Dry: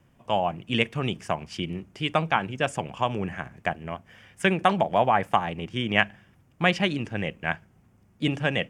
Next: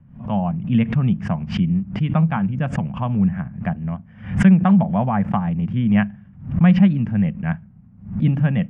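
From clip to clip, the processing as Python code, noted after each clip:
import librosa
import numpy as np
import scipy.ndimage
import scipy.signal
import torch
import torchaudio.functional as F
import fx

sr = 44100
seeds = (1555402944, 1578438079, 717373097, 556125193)

y = scipy.signal.sosfilt(scipy.signal.butter(2, 1600.0, 'lowpass', fs=sr, output='sos'), x)
y = fx.low_shelf_res(y, sr, hz=270.0, db=10.0, q=3.0)
y = fx.pre_swell(y, sr, db_per_s=120.0)
y = y * librosa.db_to_amplitude(-1.0)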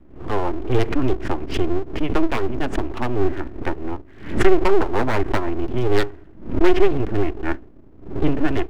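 y = np.abs(x)
y = y * librosa.db_to_amplitude(2.5)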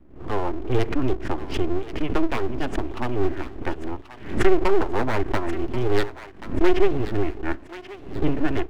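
y = fx.echo_thinned(x, sr, ms=1083, feedback_pct=44, hz=1100.0, wet_db=-10.5)
y = y * librosa.db_to_amplitude(-3.0)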